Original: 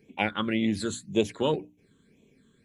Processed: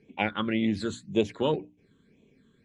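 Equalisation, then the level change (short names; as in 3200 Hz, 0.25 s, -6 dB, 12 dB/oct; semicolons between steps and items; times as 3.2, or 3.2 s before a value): air absorption 90 m; 0.0 dB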